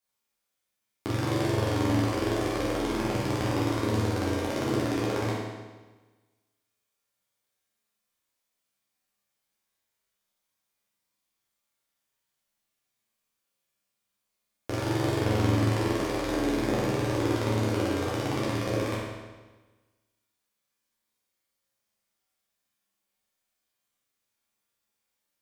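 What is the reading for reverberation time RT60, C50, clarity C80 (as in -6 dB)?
1.3 s, -1.0 dB, 2.0 dB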